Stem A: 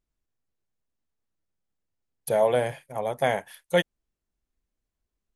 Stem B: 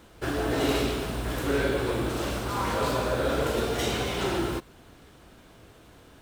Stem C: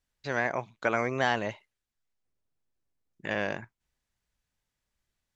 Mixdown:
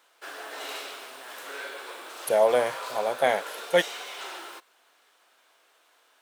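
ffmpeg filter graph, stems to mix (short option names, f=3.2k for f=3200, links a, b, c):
-filter_complex "[0:a]volume=1.5dB[a];[1:a]highpass=820,volume=-5dB[b];[2:a]highpass=f=420:p=1,acompressor=threshold=-32dB:ratio=6,volume=-13.5dB[c];[a][b][c]amix=inputs=3:normalize=0,highpass=310"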